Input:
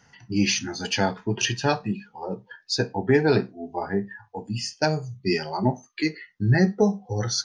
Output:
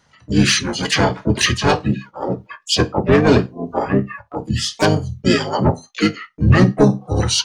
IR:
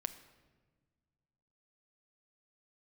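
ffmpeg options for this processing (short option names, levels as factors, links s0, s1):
-filter_complex "[0:a]agate=range=0.355:threshold=0.00708:ratio=16:detection=peak,aeval=exprs='0.473*sin(PI/2*1.58*val(0)/0.473)':c=same,asplit=4[s0][s1][s2][s3];[s1]asetrate=29433,aresample=44100,atempo=1.49831,volume=0.794[s4];[s2]asetrate=52444,aresample=44100,atempo=0.840896,volume=0.178[s5];[s3]asetrate=66075,aresample=44100,atempo=0.66742,volume=0.316[s6];[s0][s4][s5][s6]amix=inputs=4:normalize=0,volume=0.891"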